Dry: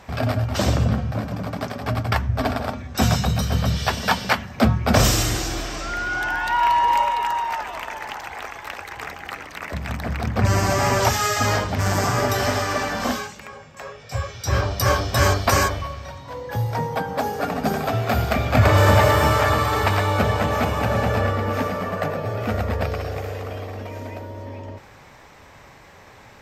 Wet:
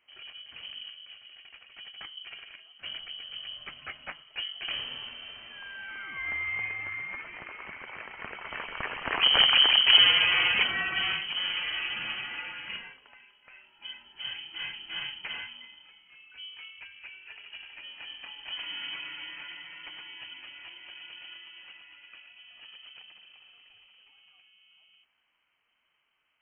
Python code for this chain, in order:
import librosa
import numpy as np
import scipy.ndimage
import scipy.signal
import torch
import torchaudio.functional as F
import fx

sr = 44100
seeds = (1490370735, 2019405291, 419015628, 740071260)

y = fx.doppler_pass(x, sr, speed_mps=18, closest_m=4.7, pass_at_s=9.41)
y = fx.freq_invert(y, sr, carrier_hz=3100)
y = y * 10.0 ** (6.5 / 20.0)